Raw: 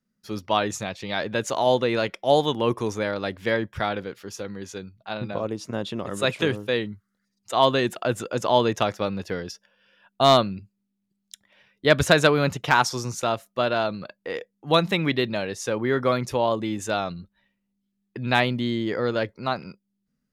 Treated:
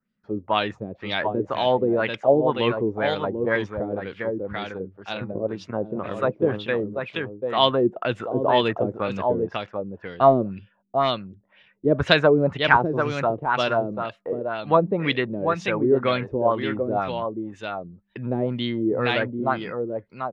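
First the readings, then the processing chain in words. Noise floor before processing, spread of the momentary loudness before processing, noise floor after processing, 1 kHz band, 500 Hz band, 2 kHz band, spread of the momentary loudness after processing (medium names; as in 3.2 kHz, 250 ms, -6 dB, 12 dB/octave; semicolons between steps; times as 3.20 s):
-77 dBFS, 14 LU, -64 dBFS, +1.0 dB, +2.0 dB, +0.5 dB, 13 LU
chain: delay 740 ms -6 dB; LFO low-pass sine 2 Hz 350–3400 Hz; trim -1.5 dB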